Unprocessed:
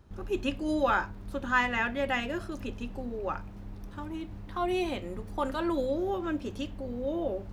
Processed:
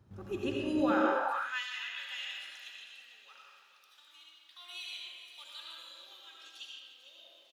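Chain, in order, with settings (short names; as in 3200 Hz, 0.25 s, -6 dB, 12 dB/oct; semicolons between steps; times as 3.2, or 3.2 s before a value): frequency-shifting echo 0.448 s, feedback 43%, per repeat -33 Hz, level -12 dB; digital reverb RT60 2 s, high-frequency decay 0.55×, pre-delay 40 ms, DRR -3 dB; high-pass sweep 110 Hz -> 3500 Hz, 0.82–1.64; gain -7.5 dB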